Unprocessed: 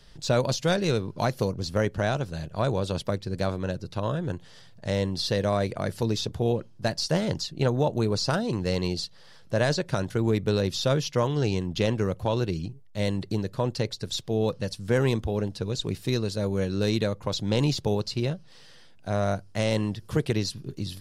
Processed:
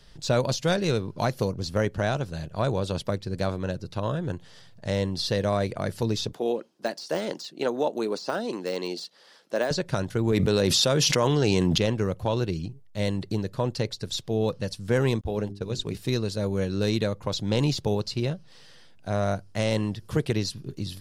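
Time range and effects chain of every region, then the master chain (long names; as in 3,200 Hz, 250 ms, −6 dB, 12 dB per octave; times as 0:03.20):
0:06.33–0:09.71: high-pass filter 250 Hz 24 dB per octave + de-essing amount 85%
0:10.32–0:11.78: high-pass filter 170 Hz 6 dB per octave + dynamic equaliser 8,500 Hz, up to +6 dB, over −53 dBFS + envelope flattener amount 100%
0:15.21–0:15.97: downward expander −31 dBFS + mains-hum notches 50/100/150/200/250/300/350/400 Hz
whole clip: no processing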